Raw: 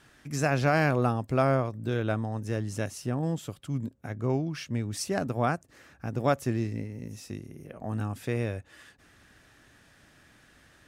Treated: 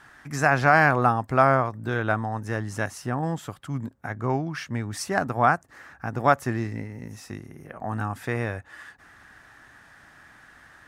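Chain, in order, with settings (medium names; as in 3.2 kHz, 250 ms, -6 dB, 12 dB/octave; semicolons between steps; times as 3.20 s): high-order bell 1.2 kHz +9.5 dB; trim +1 dB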